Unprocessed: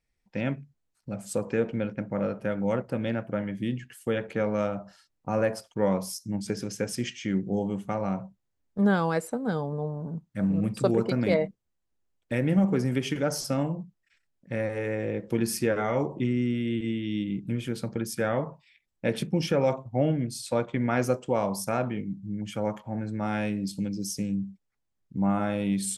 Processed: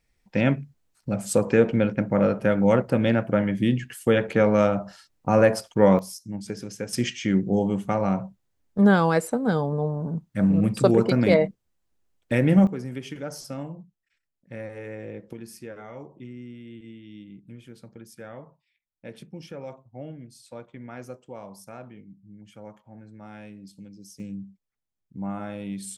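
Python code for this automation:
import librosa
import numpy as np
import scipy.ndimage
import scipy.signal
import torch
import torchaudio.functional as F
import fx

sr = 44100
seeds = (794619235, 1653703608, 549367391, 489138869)

y = fx.gain(x, sr, db=fx.steps((0.0, 8.0), (5.99, -2.5), (6.93, 5.5), (12.67, -7.0), (15.33, -14.0), (24.2, -6.5)))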